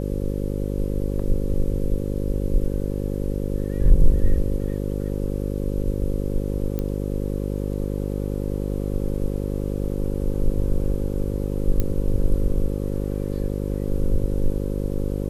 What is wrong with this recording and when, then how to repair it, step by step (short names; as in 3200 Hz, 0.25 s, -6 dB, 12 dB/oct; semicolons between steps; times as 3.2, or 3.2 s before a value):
buzz 50 Hz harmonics 11 -26 dBFS
6.79 pop -15 dBFS
11.8 pop -10 dBFS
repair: de-click; de-hum 50 Hz, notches 11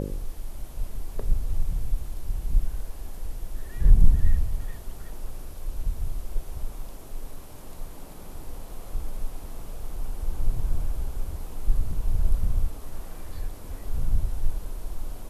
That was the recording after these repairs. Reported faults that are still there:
6.79 pop